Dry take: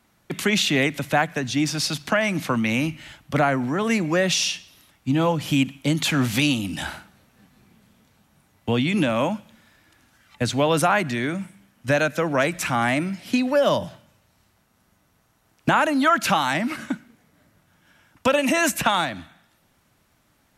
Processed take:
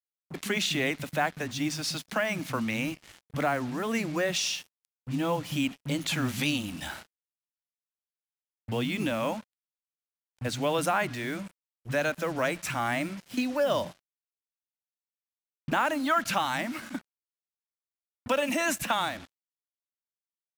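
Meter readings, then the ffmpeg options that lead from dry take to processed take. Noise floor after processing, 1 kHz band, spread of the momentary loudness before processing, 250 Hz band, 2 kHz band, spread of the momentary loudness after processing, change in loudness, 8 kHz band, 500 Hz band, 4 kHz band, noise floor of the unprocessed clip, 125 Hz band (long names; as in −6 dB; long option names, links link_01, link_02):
below −85 dBFS, −7.0 dB, 12 LU, −8.5 dB, −7.0 dB, 12 LU, −7.5 dB, −6.5 dB, −7.0 dB, −7.0 dB, −64 dBFS, −9.0 dB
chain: -filter_complex "[0:a]acrossover=split=190[link_01][link_02];[link_02]adelay=40[link_03];[link_01][link_03]amix=inputs=2:normalize=0,acrusher=bits=5:mix=0:aa=0.5,volume=-7dB"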